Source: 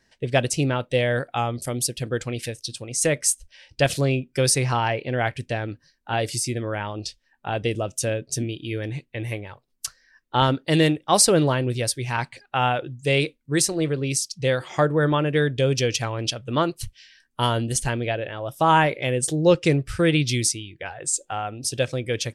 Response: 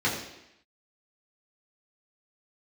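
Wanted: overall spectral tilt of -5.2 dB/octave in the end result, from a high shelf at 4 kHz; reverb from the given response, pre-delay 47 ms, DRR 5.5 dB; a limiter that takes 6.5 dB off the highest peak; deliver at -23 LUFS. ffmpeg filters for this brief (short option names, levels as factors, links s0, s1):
-filter_complex "[0:a]highshelf=f=4000:g=-6.5,alimiter=limit=0.237:level=0:latency=1,asplit=2[s0][s1];[1:a]atrim=start_sample=2205,adelay=47[s2];[s1][s2]afir=irnorm=-1:irlink=0,volume=0.126[s3];[s0][s3]amix=inputs=2:normalize=0,volume=1.12"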